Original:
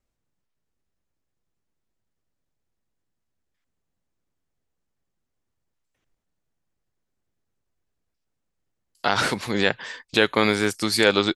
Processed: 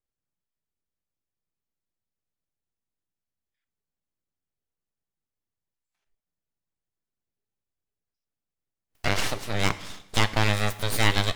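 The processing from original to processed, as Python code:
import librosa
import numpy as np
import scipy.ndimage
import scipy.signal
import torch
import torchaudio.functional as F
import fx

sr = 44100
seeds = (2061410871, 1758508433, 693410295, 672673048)

y = np.abs(x)
y = fx.rev_double_slope(y, sr, seeds[0], early_s=0.85, late_s=2.2, knee_db=-18, drr_db=12.5)
y = fx.noise_reduce_blind(y, sr, reduce_db=9)
y = y * librosa.db_to_amplitude(-2.0)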